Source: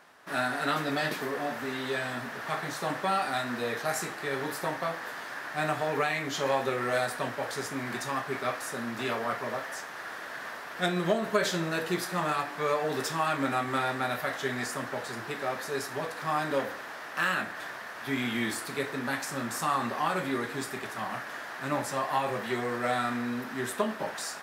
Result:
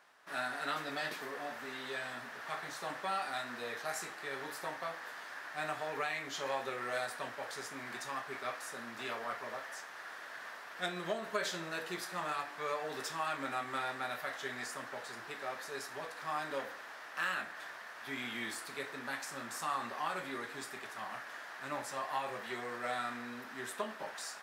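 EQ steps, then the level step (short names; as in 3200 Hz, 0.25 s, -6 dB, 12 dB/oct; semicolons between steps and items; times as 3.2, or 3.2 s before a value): low shelf 380 Hz -11 dB; bell 13000 Hz -3.5 dB 0.7 oct; -6.5 dB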